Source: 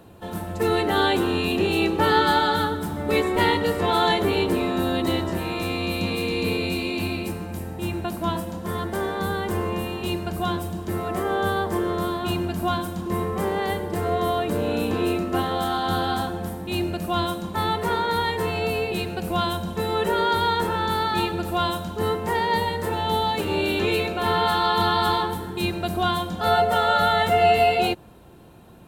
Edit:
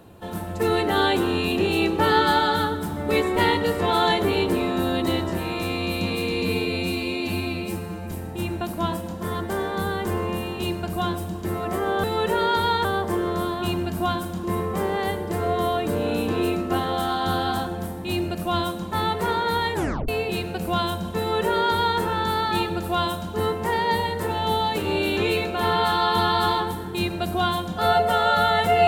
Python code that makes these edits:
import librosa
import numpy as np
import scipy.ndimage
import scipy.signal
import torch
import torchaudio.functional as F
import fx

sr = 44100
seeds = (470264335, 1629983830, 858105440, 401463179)

y = fx.edit(x, sr, fx.stretch_span(start_s=6.42, length_s=1.13, factor=1.5),
    fx.tape_stop(start_s=18.37, length_s=0.34),
    fx.duplicate(start_s=19.81, length_s=0.81, to_s=11.47), tone=tone)